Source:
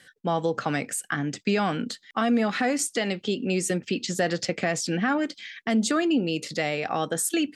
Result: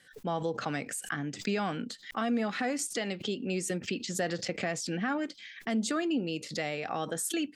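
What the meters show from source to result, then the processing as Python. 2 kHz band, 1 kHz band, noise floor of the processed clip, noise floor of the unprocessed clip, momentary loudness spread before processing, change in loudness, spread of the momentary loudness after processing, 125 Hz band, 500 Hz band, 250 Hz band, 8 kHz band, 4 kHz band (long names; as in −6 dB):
−6.5 dB, −7.0 dB, −54 dBFS, −60 dBFS, 6 LU, −6.5 dB, 5 LU, −6.5 dB, −7.0 dB, −7.0 dB, −6.0 dB, −6.0 dB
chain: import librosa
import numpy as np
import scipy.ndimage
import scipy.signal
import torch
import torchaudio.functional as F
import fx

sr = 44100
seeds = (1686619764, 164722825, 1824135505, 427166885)

y = fx.pre_swell(x, sr, db_per_s=140.0)
y = F.gain(torch.from_numpy(y), -7.0).numpy()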